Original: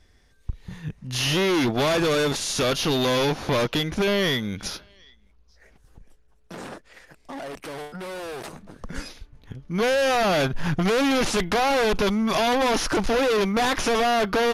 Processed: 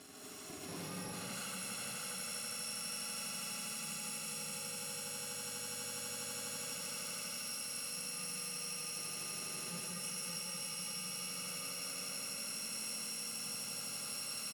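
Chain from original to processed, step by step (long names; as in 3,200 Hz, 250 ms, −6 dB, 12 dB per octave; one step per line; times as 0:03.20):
samples in bit-reversed order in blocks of 128 samples
high-pass filter 160 Hz 24 dB per octave
on a send: echo that builds up and dies away 82 ms, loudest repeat 5, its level −4.5 dB
on the sum: compressor whose output falls as the input rises −22 dBFS
low-pass filter 10,000 Hz 12 dB per octave
notch filter 980 Hz, Q 14
single-tap delay 582 ms −3.5 dB
brickwall limiter −45 dBFS, peak gain reduction 35.5 dB
reverb whose tail is shaped and stops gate 260 ms rising, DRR −4.5 dB
level +5.5 dB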